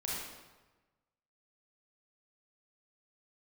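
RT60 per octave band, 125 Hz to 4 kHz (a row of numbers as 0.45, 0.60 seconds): 1.4, 1.3, 1.2, 1.2, 1.0, 0.90 seconds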